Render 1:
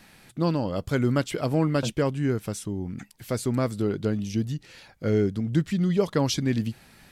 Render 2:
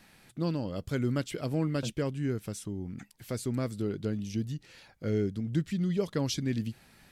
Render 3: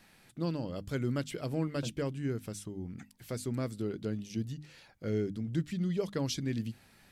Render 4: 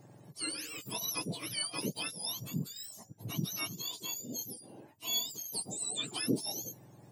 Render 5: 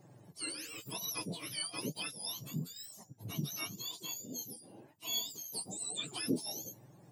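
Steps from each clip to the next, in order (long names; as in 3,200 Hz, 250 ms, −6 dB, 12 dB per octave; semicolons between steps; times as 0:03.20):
dynamic equaliser 910 Hz, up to −6 dB, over −42 dBFS, Q 1; level −5.5 dB
mains-hum notches 50/100/150/200/250/300 Hz; level −2.5 dB
frequency axis turned over on the octave scale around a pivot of 1,200 Hz; level +1.5 dB
flanger 1 Hz, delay 5 ms, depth 9.7 ms, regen +43%; level +1 dB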